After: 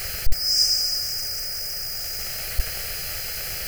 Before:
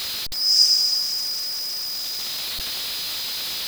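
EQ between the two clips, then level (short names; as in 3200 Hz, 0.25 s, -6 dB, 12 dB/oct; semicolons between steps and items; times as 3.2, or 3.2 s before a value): low shelf 110 Hz +11.5 dB; low shelf 260 Hz +5 dB; fixed phaser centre 1000 Hz, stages 6; +3.5 dB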